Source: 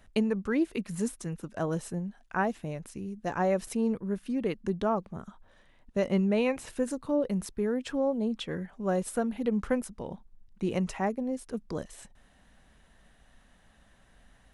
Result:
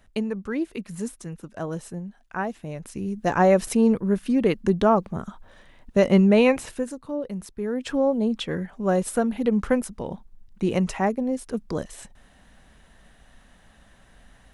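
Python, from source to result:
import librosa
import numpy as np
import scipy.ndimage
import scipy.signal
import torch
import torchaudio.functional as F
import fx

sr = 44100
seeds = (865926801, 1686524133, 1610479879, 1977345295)

y = fx.gain(x, sr, db=fx.line((2.59, 0.0), (3.12, 9.5), (6.54, 9.5), (6.95, -2.0), (7.52, -2.0), (7.92, 6.5)))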